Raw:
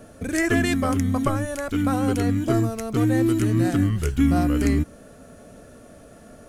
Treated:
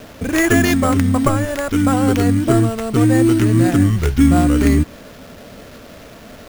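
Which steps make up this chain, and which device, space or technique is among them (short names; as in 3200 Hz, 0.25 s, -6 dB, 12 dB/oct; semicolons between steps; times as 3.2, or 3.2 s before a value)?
early 8-bit sampler (sample-rate reducer 8700 Hz, jitter 0%; bit-crush 8-bit); gain +7 dB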